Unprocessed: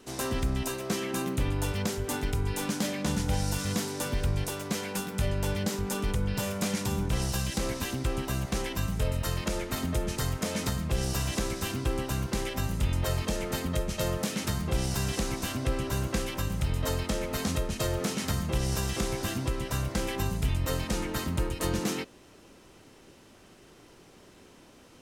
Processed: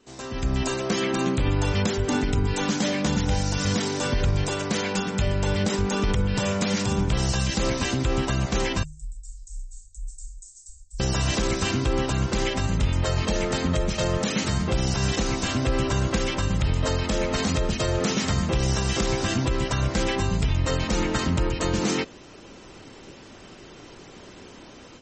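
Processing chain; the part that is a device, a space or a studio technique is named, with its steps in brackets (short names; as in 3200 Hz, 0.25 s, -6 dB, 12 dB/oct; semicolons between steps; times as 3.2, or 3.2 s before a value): 8.83–11 inverse Chebyshev band-stop 130–2600 Hz, stop band 70 dB; de-hum 76.34 Hz, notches 2; 2.06–2.47 dynamic EQ 230 Hz, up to +7 dB, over -49 dBFS, Q 1.8; low-bitrate web radio (AGC gain up to 15.5 dB; limiter -8 dBFS, peak gain reduction 5.5 dB; gain -5.5 dB; MP3 32 kbps 44100 Hz)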